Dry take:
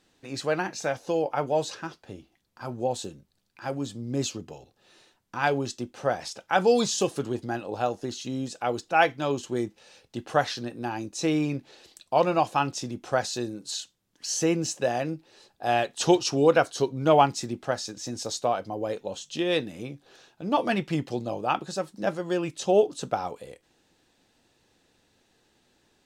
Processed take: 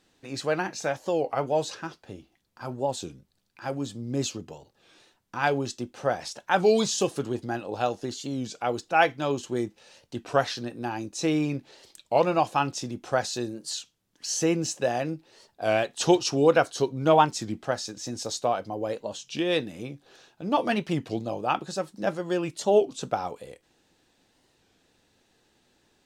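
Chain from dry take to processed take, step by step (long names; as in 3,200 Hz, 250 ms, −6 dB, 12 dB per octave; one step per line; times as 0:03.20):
0:07.68–0:08.10: dynamic equaliser 3,600 Hz, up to +5 dB, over −46 dBFS, Q 0.81
wow of a warped record 33 1/3 rpm, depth 160 cents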